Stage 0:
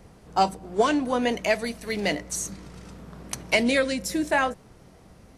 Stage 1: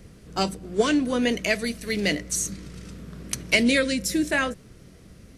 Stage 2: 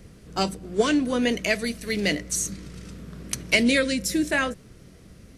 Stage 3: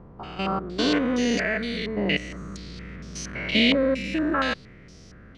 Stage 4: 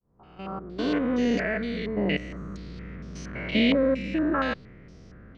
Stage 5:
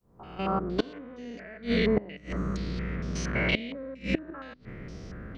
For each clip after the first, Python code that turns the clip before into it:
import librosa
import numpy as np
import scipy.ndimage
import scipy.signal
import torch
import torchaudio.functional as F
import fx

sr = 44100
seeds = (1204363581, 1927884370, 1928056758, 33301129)

y1 = fx.peak_eq(x, sr, hz=840.0, db=-14.5, octaves=0.91)
y1 = y1 * librosa.db_to_amplitude(4.0)
y2 = y1
y3 = fx.spec_steps(y2, sr, hold_ms=200)
y3 = fx.filter_held_lowpass(y3, sr, hz=4.3, low_hz=970.0, high_hz=5600.0)
y3 = y3 * librosa.db_to_amplitude(2.0)
y4 = fx.fade_in_head(y3, sr, length_s=1.25)
y4 = fx.lowpass(y4, sr, hz=1500.0, slope=6)
y5 = fx.hum_notches(y4, sr, base_hz=50, count=6)
y5 = fx.gate_flip(y5, sr, shuts_db=-20.0, range_db=-24)
y5 = y5 * librosa.db_to_amplitude(7.5)